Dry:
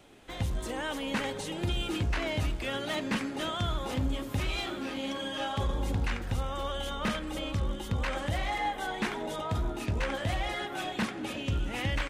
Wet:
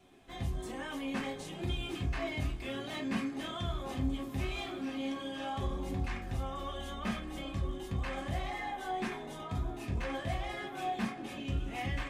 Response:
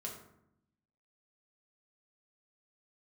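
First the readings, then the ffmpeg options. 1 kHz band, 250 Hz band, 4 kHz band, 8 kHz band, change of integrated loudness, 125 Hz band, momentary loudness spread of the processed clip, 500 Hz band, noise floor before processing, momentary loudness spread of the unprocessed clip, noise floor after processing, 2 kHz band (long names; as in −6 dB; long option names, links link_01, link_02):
−4.0 dB, −2.5 dB, −7.5 dB, −7.5 dB, −4.5 dB, −4.5 dB, 4 LU, −5.5 dB, −40 dBFS, 3 LU, −44 dBFS, −6.0 dB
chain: -filter_complex "[0:a]lowshelf=frequency=72:gain=8[link_01];[1:a]atrim=start_sample=2205,afade=type=out:start_time=0.14:duration=0.01,atrim=end_sample=6615,asetrate=74970,aresample=44100[link_02];[link_01][link_02]afir=irnorm=-1:irlink=0"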